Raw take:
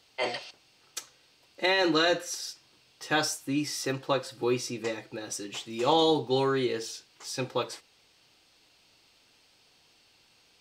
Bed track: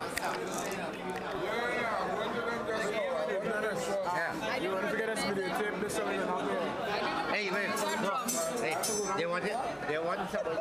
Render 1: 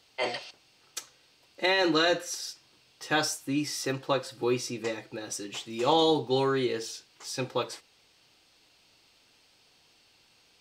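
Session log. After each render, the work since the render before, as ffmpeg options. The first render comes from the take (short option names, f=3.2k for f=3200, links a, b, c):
-af anull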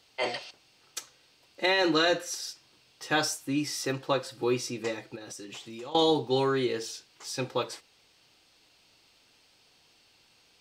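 -filter_complex "[0:a]asettb=1/sr,asplit=3[a][b][c];[a]atrim=end=5.154[d];[b]atrim=start=5.15:end=5.95,asetpts=PTS-STARTPTS,afade=t=in:d=0.004:c=qsin,afade=t=out:st=0.796:d=0.004:c=qsin,acompressor=threshold=-39dB:ratio=5:attack=3.2:release=140:knee=1:detection=peak[e];[c]atrim=start=5.946[f];[d][e]acrossfade=d=0.004:c1=hsin:c2=qsin[g];[g][f]acrossfade=d=0.004:c1=qsin:c2=hsin"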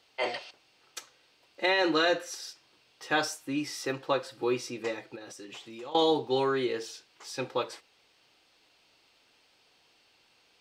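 -af "bass=f=250:g=-7,treble=f=4k:g=-6"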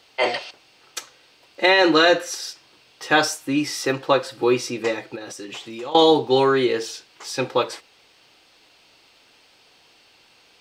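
-af "volume=10dB"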